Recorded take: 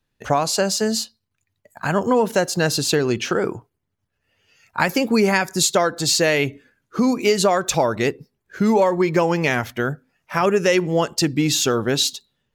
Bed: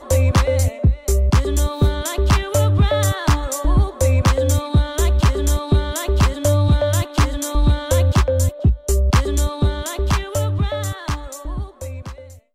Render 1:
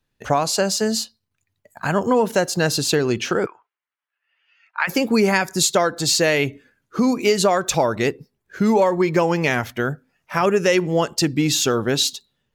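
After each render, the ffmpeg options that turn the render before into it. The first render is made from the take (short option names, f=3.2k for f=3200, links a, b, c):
-filter_complex "[0:a]asplit=3[a][b][c];[a]afade=t=out:st=3.45:d=0.02[d];[b]asuperpass=centerf=1800:order=4:qfactor=0.88,afade=t=in:st=3.45:d=0.02,afade=t=out:st=4.87:d=0.02[e];[c]afade=t=in:st=4.87:d=0.02[f];[d][e][f]amix=inputs=3:normalize=0"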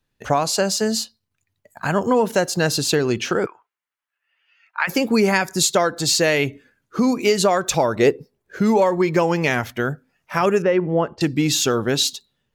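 -filter_complex "[0:a]asettb=1/sr,asplit=3[a][b][c];[a]atrim=end=7.984[d];[b]atrim=start=7.98:end=8.61,asetpts=PTS-STARTPTS,afade=t=in:d=0.004:c=qsin,afade=t=out:st=0.626:d=0.004:c=qsin,equalizer=f=490:w=1.2:g=8[e];[c]atrim=start=8.606[f];[d][e]acrossfade=d=0.004:c1=hsin:c2=qsin[g];[g][f]acrossfade=d=0.004:c1=qsin:c2=hsin,asettb=1/sr,asplit=3[h][i][j];[h]atrim=end=10.624[k];[i]atrim=start=10.62:end=11.21,asetpts=PTS-STARTPTS,afade=t=in:d=0.004:c=qsin,afade=t=out:st=0.586:d=0.004:c=qsin,lowpass=1.5k[l];[j]atrim=start=11.206[m];[k][l]acrossfade=d=0.004:c1=hsin:c2=qsin[n];[n][m]acrossfade=d=0.004:c1=qsin:c2=hsin"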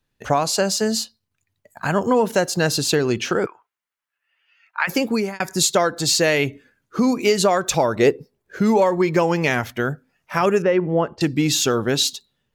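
-filter_complex "[0:a]asplit=2[a][b];[a]atrim=end=5.4,asetpts=PTS-STARTPTS,afade=t=out:st=4.87:d=0.53:c=qsin[c];[b]atrim=start=5.4,asetpts=PTS-STARTPTS,afade=t=in:d=0.004:c=hsin[d];[c][d]concat=n=2:v=0:a=1"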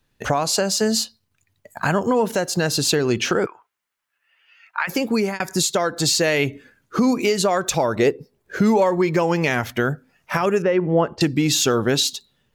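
-filter_complex "[0:a]asplit=2[a][b];[b]acompressor=threshold=-26dB:ratio=6,volume=1dB[c];[a][c]amix=inputs=2:normalize=0,alimiter=limit=-8.5dB:level=0:latency=1:release=379"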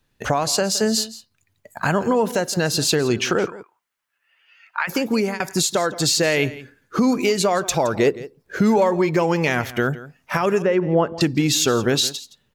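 -af "aecho=1:1:168:0.141"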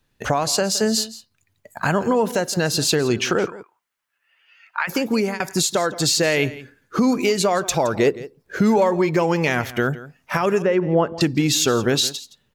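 -af anull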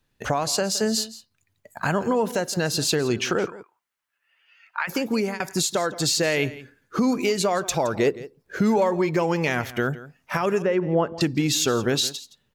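-af "volume=-3.5dB"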